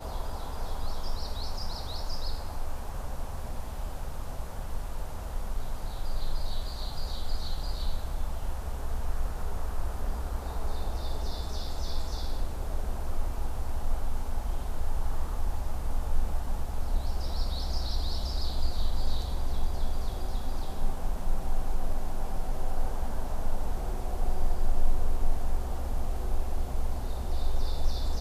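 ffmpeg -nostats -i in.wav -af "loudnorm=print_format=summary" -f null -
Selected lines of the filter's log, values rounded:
Input Integrated:    -36.3 LUFS
Input True Peak:     -10.9 dBTP
Input LRA:             3.9 LU
Input Threshold:     -46.3 LUFS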